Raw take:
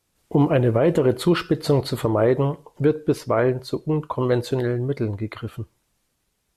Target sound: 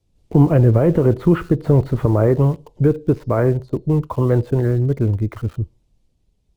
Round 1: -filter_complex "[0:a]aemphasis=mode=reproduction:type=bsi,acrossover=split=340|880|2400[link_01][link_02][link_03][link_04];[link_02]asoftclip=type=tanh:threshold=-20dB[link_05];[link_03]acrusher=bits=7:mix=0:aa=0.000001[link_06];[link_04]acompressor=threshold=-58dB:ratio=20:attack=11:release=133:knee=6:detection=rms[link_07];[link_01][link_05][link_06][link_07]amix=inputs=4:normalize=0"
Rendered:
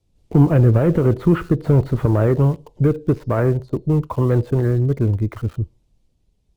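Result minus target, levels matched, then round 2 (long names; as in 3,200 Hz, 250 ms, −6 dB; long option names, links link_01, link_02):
soft clipping: distortion +17 dB
-filter_complex "[0:a]aemphasis=mode=reproduction:type=bsi,acrossover=split=340|880|2400[link_01][link_02][link_03][link_04];[link_02]asoftclip=type=tanh:threshold=-8.5dB[link_05];[link_03]acrusher=bits=7:mix=0:aa=0.000001[link_06];[link_04]acompressor=threshold=-58dB:ratio=20:attack=11:release=133:knee=6:detection=rms[link_07];[link_01][link_05][link_06][link_07]amix=inputs=4:normalize=0"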